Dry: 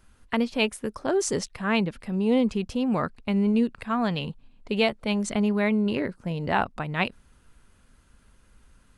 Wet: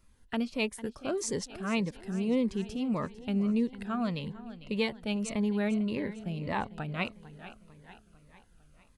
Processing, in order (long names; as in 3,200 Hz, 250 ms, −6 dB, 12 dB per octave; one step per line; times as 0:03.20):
repeating echo 450 ms, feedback 53%, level −15.5 dB
phaser whose notches keep moving one way falling 1.7 Hz
level −5.5 dB